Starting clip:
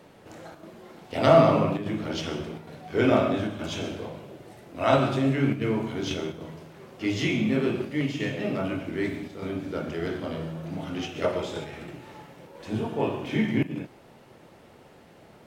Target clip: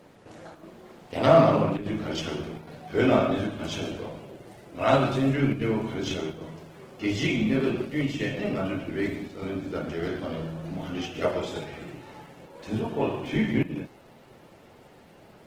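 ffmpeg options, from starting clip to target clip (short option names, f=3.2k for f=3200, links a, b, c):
-ar 48000 -c:a libopus -b:a 16k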